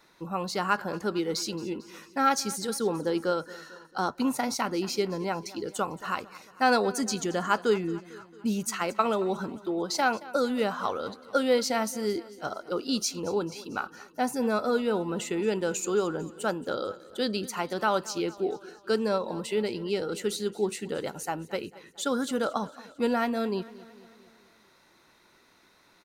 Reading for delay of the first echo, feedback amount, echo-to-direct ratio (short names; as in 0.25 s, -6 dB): 0.224 s, 56%, -17.5 dB